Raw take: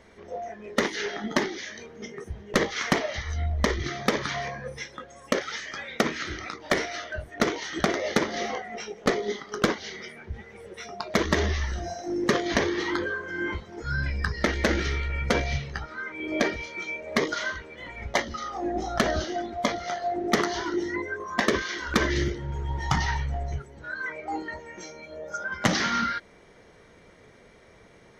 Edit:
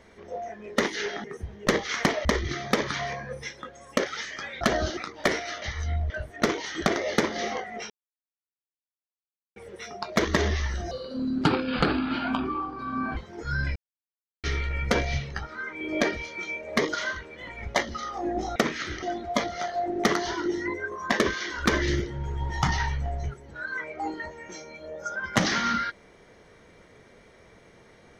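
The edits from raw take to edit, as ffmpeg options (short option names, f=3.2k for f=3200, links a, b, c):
-filter_complex "[0:a]asplit=15[a][b][c][d][e][f][g][h][i][j][k][l][m][n][o];[a]atrim=end=1.242[p];[b]atrim=start=2.108:end=3.122[q];[c]atrim=start=3.598:end=5.962[r];[d]atrim=start=18.948:end=19.312[s];[e]atrim=start=6.428:end=7.082[t];[f]atrim=start=3.118:end=3.602[u];[g]atrim=start=7.078:end=8.88,asetpts=PTS-STARTPTS,afade=t=out:st=1.798:d=0.004:c=hsin[v];[h]atrim=start=8.88:end=10.54,asetpts=PTS-STARTPTS,volume=0[w];[i]atrim=start=10.54:end=11.894,asetpts=PTS-STARTPTS,afade=t=in:d=0.004:c=hsin[x];[j]atrim=start=11.89:end=13.56,asetpts=PTS-STARTPTS,asetrate=32634,aresample=44100[y];[k]atrim=start=13.556:end=14.15,asetpts=PTS-STARTPTS,afade=t=out:st=0.59:d=0.004:c=hsin[z];[l]atrim=start=14.15:end=14.83,asetpts=PTS-STARTPTS,volume=0[aa];[m]atrim=start=14.83:end=18.952,asetpts=PTS-STARTPTS,afade=t=in:d=0.004:c=hsin[ab];[n]atrim=start=5.958:end=6.432[ac];[o]atrim=start=19.308[ad];[p][q]acrossfade=d=0.004:c1=hsin:c2=hsin[ae];[ae][r]acrossfade=d=0.004:c1=hsin:c2=hsin[af];[af][s]acrossfade=d=0.004:c1=hsin:c2=hsin[ag];[ag][t]acrossfade=d=0.004:c1=hsin:c2=hsin[ah];[ah][u]acrossfade=d=0.004:c1=hsin:c2=hsin[ai];[v][w][x]concat=n=3:v=0:a=1[aj];[ai][aj]acrossfade=d=0.004:c1=hsin:c2=hsin[ak];[ak][y]acrossfade=d=0.004:c1=hsin:c2=hsin[al];[z][aa][ab]concat=n=3:v=0:a=1[am];[al][am]acrossfade=d=0.004:c1=hsin:c2=hsin[an];[an][ac]acrossfade=d=0.004:c1=hsin:c2=hsin[ao];[ao][ad]acrossfade=d=0.004:c1=hsin:c2=hsin"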